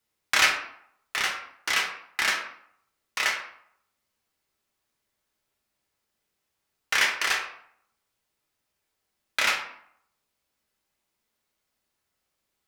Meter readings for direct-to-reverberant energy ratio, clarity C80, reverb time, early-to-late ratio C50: 0.0 dB, 10.0 dB, 0.65 s, 7.0 dB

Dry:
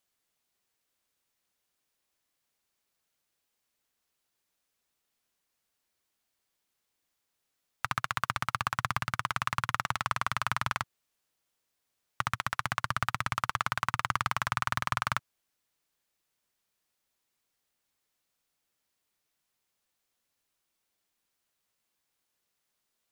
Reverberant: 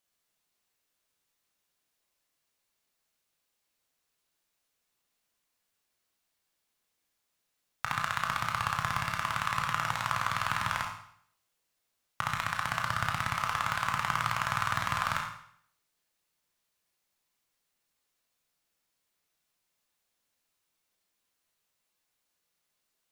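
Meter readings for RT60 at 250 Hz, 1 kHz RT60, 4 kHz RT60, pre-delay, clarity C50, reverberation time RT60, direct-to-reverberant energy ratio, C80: 0.65 s, 0.65 s, 0.60 s, 18 ms, 4.5 dB, 0.65 s, 0.0 dB, 7.5 dB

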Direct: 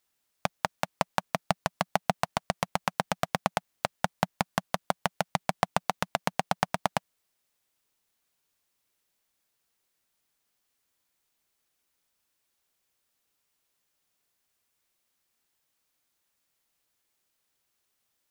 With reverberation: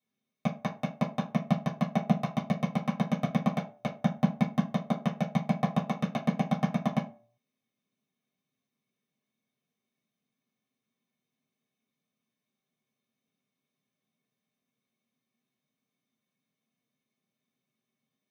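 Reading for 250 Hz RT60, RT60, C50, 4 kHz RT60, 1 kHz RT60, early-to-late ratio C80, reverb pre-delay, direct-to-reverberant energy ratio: 0.40 s, 0.45 s, 11.0 dB, 0.20 s, 0.40 s, 17.0 dB, 3 ms, -7.0 dB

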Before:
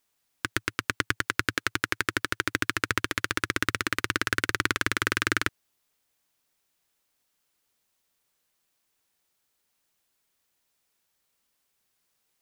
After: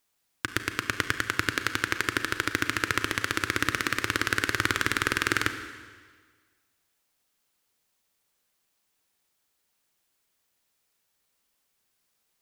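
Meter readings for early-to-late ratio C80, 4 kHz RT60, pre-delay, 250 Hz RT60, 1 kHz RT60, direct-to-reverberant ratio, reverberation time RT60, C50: 10.0 dB, 1.5 s, 33 ms, 1.5 s, 1.6 s, 8.0 dB, 1.6 s, 9.0 dB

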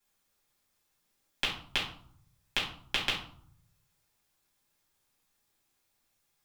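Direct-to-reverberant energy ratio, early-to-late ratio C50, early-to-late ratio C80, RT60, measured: -6.5 dB, 5.5 dB, 10.0 dB, 0.60 s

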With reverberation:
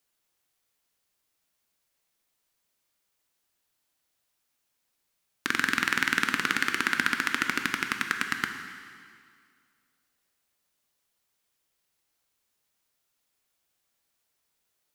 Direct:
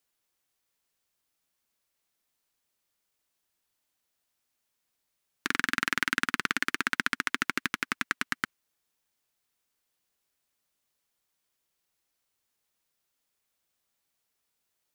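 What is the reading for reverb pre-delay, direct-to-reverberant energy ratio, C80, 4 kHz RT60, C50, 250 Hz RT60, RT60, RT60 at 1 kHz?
7 ms, 5.0 dB, 7.5 dB, 1.9 s, 6.5 dB, 2.2 s, 2.2 s, 2.2 s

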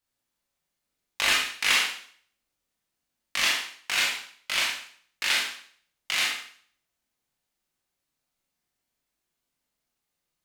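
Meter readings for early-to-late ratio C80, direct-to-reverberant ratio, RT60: 8.5 dB, -2.5 dB, 0.55 s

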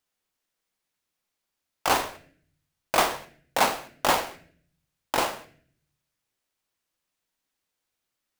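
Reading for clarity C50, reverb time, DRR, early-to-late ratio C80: 14.5 dB, 0.55 s, 9.0 dB, 18.0 dB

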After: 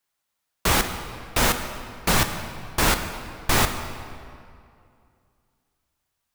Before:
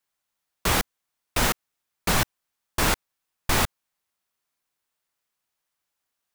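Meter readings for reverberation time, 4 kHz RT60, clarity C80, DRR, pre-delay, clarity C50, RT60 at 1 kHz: 2.4 s, 1.6 s, 9.0 dB, 6.5 dB, 6 ms, 8.0 dB, 2.4 s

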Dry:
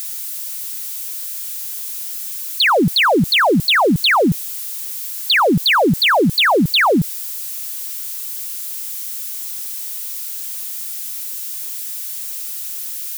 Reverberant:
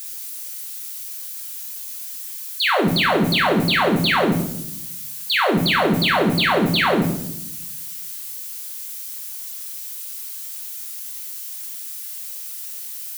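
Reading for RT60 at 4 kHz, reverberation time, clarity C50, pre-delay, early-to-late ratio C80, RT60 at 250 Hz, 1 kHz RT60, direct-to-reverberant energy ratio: 0.65 s, 0.80 s, 6.5 dB, 5 ms, 9.5 dB, 1.3 s, 0.70 s, -1.0 dB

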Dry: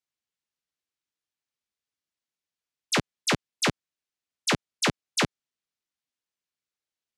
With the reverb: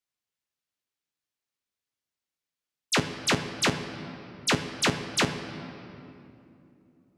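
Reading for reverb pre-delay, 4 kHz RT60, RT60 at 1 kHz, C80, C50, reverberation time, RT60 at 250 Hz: 7 ms, 1.8 s, 2.5 s, 10.0 dB, 9.0 dB, 2.8 s, 4.4 s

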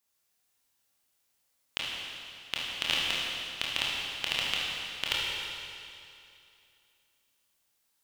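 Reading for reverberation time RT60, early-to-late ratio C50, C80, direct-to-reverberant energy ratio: 2.6 s, -2.0 dB, -0.5 dB, -5.5 dB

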